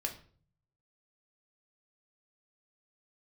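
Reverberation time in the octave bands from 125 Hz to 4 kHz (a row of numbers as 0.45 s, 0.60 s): 1.0 s, 0.70 s, 0.50 s, 0.40 s, 0.40 s, 0.35 s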